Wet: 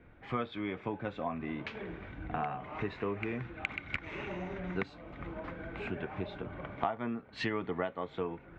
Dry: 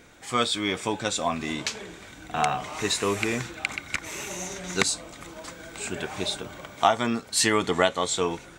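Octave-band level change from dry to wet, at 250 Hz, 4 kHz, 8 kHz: -7.0 dB, -20.5 dB, under -35 dB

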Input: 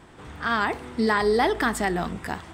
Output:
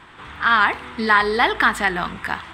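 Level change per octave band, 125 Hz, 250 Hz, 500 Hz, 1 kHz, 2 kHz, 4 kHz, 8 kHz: -1.5 dB, -1.5 dB, -1.5 dB, +7.0 dB, +9.5 dB, +7.5 dB, -1.5 dB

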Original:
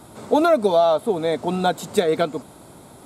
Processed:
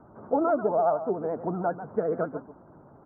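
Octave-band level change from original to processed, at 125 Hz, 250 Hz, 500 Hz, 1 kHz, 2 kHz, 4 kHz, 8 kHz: -7.0 dB, -7.0 dB, -7.5 dB, -6.5 dB, -12.0 dB, under -40 dB, under -40 dB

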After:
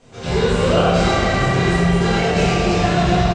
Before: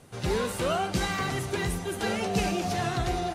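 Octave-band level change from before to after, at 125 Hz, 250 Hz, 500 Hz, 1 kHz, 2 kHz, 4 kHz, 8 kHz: +14.5 dB, +13.0 dB, +12.5 dB, +10.5 dB, +11.0 dB, +10.5 dB, +5.0 dB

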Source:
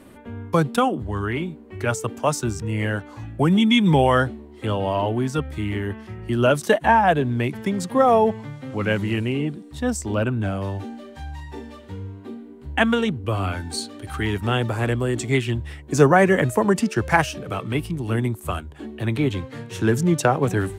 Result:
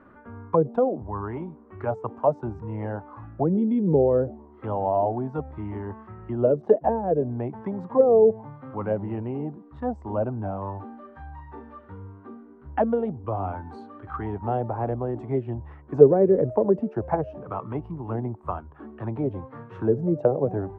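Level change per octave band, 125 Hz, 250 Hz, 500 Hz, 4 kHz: -7.0 dB, -5.5 dB, +0.5 dB, under -30 dB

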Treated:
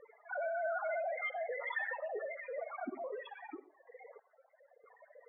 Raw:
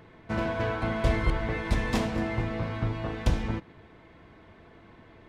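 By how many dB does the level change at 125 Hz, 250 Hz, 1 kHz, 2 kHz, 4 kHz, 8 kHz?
under -40 dB, -21.5 dB, -6.5 dB, -5.0 dB, -18.5 dB, under -30 dB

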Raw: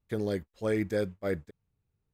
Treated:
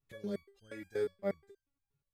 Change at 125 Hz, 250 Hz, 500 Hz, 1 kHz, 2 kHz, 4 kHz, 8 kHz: -14.0 dB, -10.5 dB, -6.5 dB, -8.0 dB, -10.0 dB, -9.5 dB, under -10 dB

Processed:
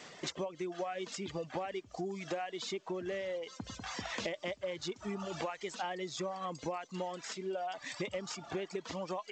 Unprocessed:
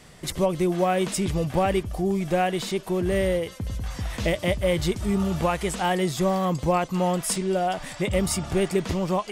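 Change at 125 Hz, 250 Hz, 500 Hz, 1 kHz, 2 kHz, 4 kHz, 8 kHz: -21.0 dB, -17.0 dB, -14.0 dB, -13.5 dB, -11.0 dB, -9.5 dB, -14.5 dB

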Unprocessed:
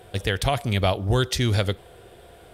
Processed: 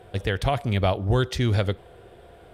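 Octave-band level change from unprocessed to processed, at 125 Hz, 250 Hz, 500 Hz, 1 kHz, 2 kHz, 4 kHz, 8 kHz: 0.0 dB, 0.0 dB, 0.0 dB, -0.5 dB, -2.5 dB, -5.5 dB, -9.0 dB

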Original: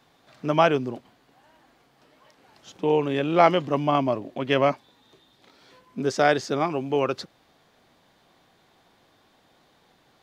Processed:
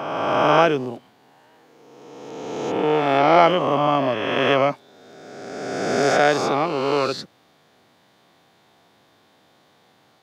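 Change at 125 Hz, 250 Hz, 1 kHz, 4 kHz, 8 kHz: +1.0 dB, +2.5 dB, +5.5 dB, +6.5 dB, +7.0 dB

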